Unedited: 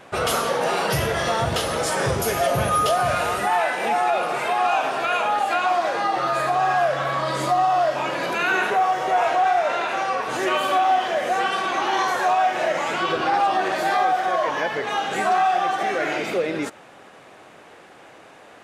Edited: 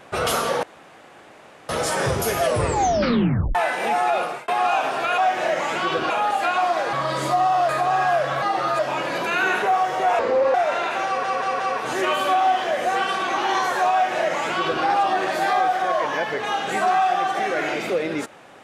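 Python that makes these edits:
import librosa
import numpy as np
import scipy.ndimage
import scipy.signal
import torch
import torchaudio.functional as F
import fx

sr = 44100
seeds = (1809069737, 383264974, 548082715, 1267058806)

y = fx.edit(x, sr, fx.room_tone_fill(start_s=0.63, length_s=1.06),
    fx.tape_stop(start_s=2.41, length_s=1.14),
    fx.fade_out_span(start_s=4.21, length_s=0.27),
    fx.swap(start_s=6.01, length_s=0.37, other_s=7.11, other_length_s=0.76),
    fx.speed_span(start_s=9.27, length_s=0.25, speed=0.71),
    fx.stutter(start_s=10.04, slice_s=0.18, count=4),
    fx.duplicate(start_s=12.36, length_s=0.92, to_s=5.18), tone=tone)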